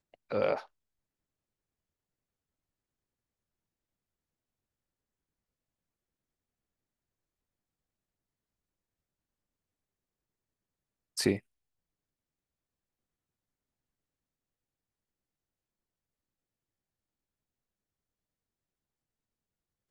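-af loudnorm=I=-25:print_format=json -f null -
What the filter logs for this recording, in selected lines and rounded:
"input_i" : "-32.9",
"input_tp" : "-12.4",
"input_lra" : "0.3",
"input_thresh" : "-43.2",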